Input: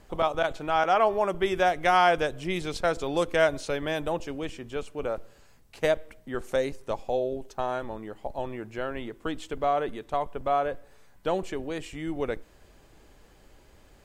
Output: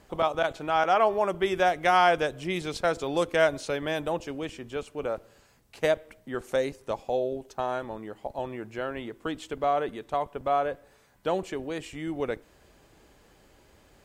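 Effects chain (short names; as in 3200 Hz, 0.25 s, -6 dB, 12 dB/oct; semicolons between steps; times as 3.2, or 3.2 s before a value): HPF 71 Hz 6 dB/oct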